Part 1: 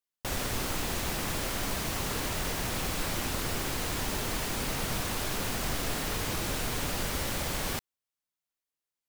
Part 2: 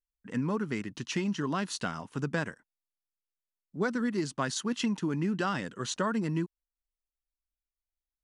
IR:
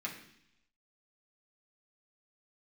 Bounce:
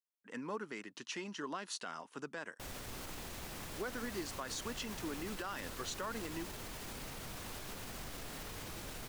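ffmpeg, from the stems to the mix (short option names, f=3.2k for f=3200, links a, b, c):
-filter_complex "[0:a]alimiter=level_in=1dB:limit=-24dB:level=0:latency=1,volume=-1dB,adelay=2350,volume=-11dB[a];[1:a]highpass=390,volume=-5dB[b];[a][b]amix=inputs=2:normalize=0,alimiter=level_in=6.5dB:limit=-24dB:level=0:latency=1:release=77,volume=-6.5dB"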